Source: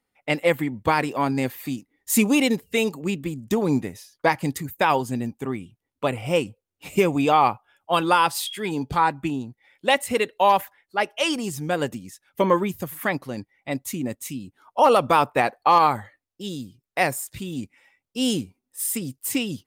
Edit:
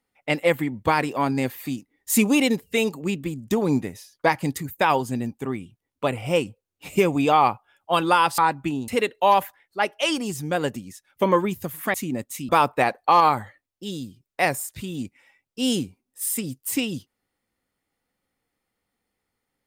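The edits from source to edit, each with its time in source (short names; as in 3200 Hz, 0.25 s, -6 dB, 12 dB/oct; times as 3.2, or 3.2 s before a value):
8.38–8.97 cut
9.47–10.06 cut
13.12–13.85 cut
14.4–15.07 cut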